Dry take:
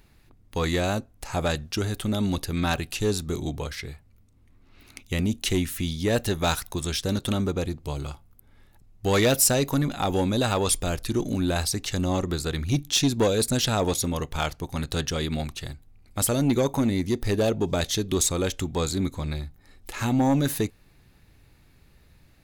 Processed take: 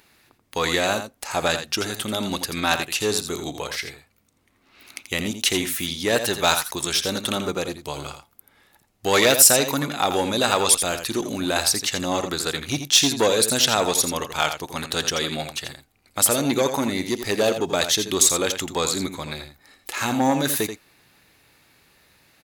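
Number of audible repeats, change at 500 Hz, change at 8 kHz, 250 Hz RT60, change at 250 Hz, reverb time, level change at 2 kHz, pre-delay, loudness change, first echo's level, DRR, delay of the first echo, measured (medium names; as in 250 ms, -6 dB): 1, +3.0 dB, +8.0 dB, no reverb, -1.0 dB, no reverb, +7.5 dB, no reverb, +4.5 dB, -9.0 dB, no reverb, 84 ms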